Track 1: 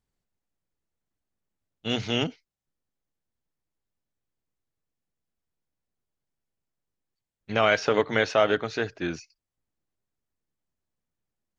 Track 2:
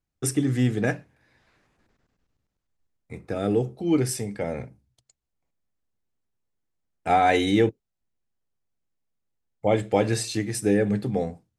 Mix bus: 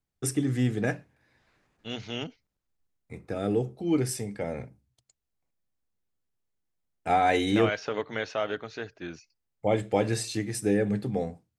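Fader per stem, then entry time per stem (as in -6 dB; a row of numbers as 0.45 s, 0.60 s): -8.5 dB, -3.5 dB; 0.00 s, 0.00 s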